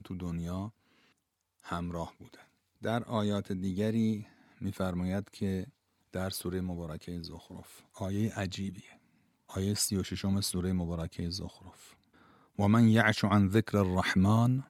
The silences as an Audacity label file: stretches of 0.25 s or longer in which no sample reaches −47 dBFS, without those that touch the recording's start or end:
0.700000	1.600000	silence
2.420000	2.820000	silence
4.230000	4.610000	silence
5.690000	6.130000	silence
8.930000	9.490000	silence
11.930000	12.580000	silence